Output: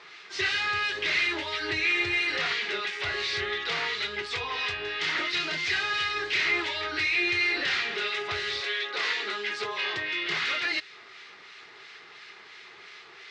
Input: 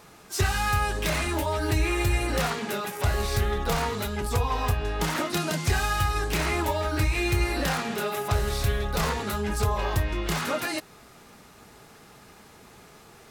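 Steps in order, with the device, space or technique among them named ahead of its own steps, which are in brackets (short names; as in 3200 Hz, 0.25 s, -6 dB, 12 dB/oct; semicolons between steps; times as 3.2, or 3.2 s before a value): weighting filter ITU-R 468; guitar amplifier with harmonic tremolo (harmonic tremolo 2.9 Hz, depth 50%, crossover 1400 Hz; soft clip -23.5 dBFS, distortion -12 dB; speaker cabinet 76–4000 Hz, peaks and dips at 91 Hz +5 dB, 230 Hz -9 dB, 380 Hz +8 dB, 580 Hz -5 dB, 830 Hz -4 dB, 2000 Hz +7 dB); dynamic EQ 980 Hz, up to -5 dB, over -47 dBFS, Q 1.1; 8.6–10.32 HPF 360 Hz -> 96 Hz 24 dB/oct; gain +3 dB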